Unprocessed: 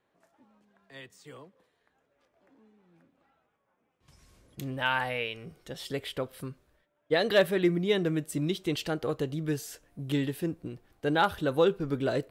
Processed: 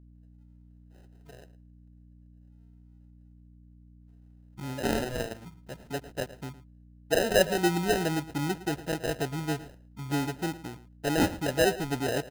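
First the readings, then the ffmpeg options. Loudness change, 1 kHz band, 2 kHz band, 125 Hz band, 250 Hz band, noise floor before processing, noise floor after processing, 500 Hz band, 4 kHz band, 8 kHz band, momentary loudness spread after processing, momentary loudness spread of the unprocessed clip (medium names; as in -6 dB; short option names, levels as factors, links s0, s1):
0.0 dB, -0.5 dB, -0.5 dB, 0.0 dB, 0.0 dB, -76 dBFS, -55 dBFS, -0.5 dB, 0.0 dB, +8.0 dB, 18 LU, 18 LU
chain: -filter_complex "[0:a]afwtdn=0.0158,aemphasis=mode=production:type=cd,acrusher=samples=39:mix=1:aa=0.000001,aeval=exprs='val(0)+0.00251*(sin(2*PI*60*n/s)+sin(2*PI*2*60*n/s)/2+sin(2*PI*3*60*n/s)/3+sin(2*PI*4*60*n/s)/4+sin(2*PI*5*60*n/s)/5)':c=same,asplit=2[s0][s1];[s1]adelay=110.8,volume=0.158,highshelf=f=4000:g=-2.49[s2];[s0][s2]amix=inputs=2:normalize=0"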